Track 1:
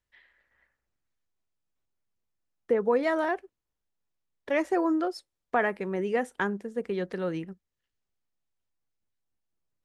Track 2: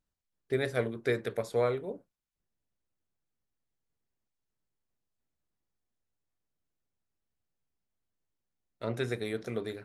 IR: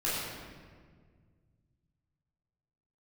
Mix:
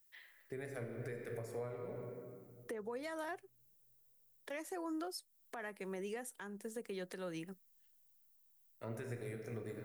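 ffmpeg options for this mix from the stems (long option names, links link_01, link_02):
-filter_complex "[0:a]aemphasis=mode=production:type=bsi,volume=-1.5dB[link_01];[1:a]equalizer=frequency=3700:width=2.8:gain=-14.5,volume=-9dB,asplit=2[link_02][link_03];[link_03]volume=-10.5dB[link_04];[2:a]atrim=start_sample=2205[link_05];[link_04][link_05]afir=irnorm=-1:irlink=0[link_06];[link_01][link_02][link_06]amix=inputs=3:normalize=0,highshelf=frequency=6500:gain=8.5,acrossover=split=180[link_07][link_08];[link_08]acompressor=threshold=-43dB:ratio=2[link_09];[link_07][link_09]amix=inputs=2:normalize=0,alimiter=level_in=10dB:limit=-24dB:level=0:latency=1:release=288,volume=-10dB"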